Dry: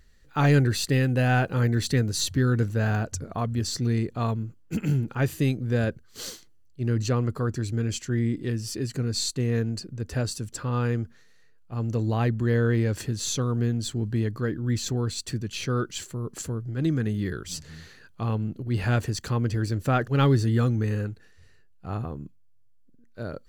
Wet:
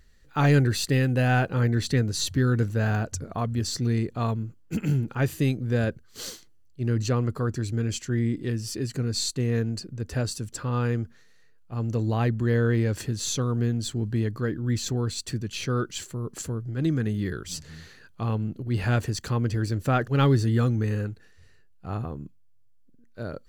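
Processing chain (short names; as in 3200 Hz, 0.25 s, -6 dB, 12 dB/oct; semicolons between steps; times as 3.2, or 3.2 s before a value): 1.46–2.25 high shelf 6100 Hz -> 11000 Hz -6.5 dB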